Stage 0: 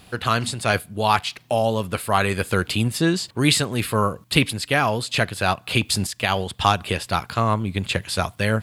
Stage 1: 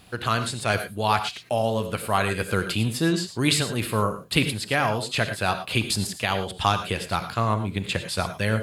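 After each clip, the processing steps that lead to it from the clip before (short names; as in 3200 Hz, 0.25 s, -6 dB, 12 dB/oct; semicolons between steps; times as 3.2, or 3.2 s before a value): non-linear reverb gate 0.13 s rising, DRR 9 dB; gain -3.5 dB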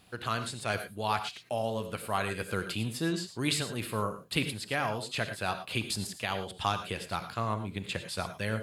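low shelf 74 Hz -5.5 dB; gain -8 dB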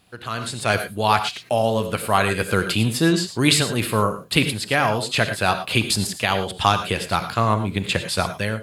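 AGC gain up to 12.5 dB; gain +1 dB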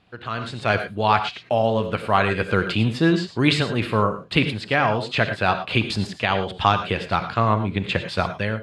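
LPF 3300 Hz 12 dB/oct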